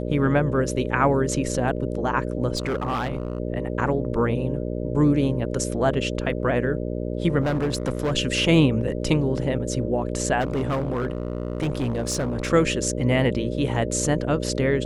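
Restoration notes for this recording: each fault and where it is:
mains buzz 60 Hz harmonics 10 −28 dBFS
0:02.55–0:03.40: clipping −21 dBFS
0:07.41–0:08.13: clipping −19.5 dBFS
0:10.40–0:12.53: clipping −20.5 dBFS

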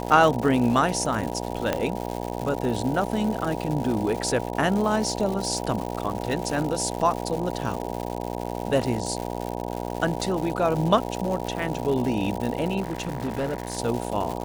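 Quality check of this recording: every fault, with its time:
mains buzz 60 Hz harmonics 16 −31 dBFS
surface crackle 240 per second −29 dBFS
0:01.73: click −9 dBFS
0:12.80–0:13.79: clipping −23.5 dBFS

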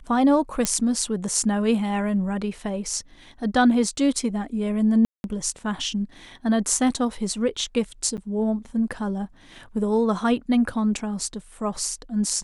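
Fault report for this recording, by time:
0:00.65: click −6 dBFS
0:05.05–0:05.24: drop-out 191 ms
0:08.17–0:08.18: drop-out 8.5 ms

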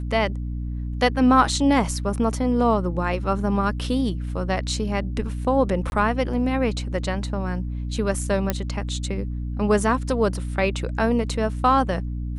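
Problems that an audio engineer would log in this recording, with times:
mains hum 60 Hz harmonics 5 −28 dBFS
0:05.90–0:05.92: drop-out 21 ms
0:08.50: click −7 dBFS

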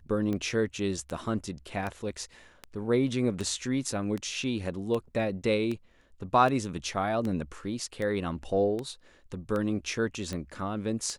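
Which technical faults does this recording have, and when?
scratch tick 78 rpm −21 dBFS

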